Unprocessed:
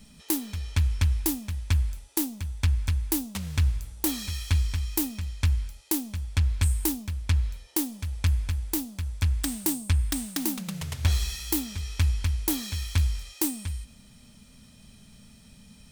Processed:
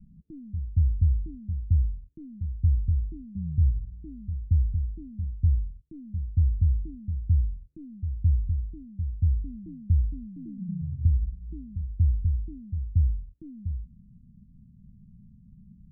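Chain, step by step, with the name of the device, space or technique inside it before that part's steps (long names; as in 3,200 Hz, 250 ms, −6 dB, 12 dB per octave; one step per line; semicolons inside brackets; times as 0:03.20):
the neighbour's flat through the wall (low-pass filter 190 Hz 24 dB per octave; parametric band 170 Hz +4.5 dB)
level +1 dB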